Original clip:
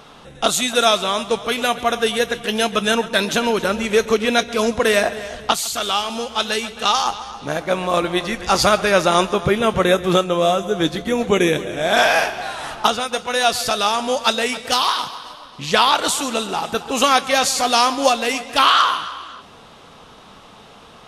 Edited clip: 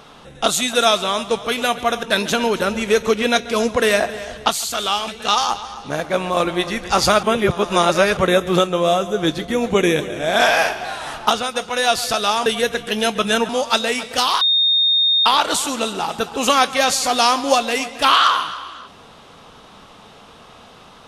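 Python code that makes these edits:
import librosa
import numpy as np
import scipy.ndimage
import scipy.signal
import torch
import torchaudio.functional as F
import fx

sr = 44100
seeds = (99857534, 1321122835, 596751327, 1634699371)

y = fx.edit(x, sr, fx.move(start_s=2.03, length_s=1.03, to_s=14.03),
    fx.cut(start_s=6.11, length_s=0.54),
    fx.reverse_span(start_s=8.8, length_s=0.94),
    fx.bleep(start_s=14.95, length_s=0.85, hz=3680.0, db=-12.5), tone=tone)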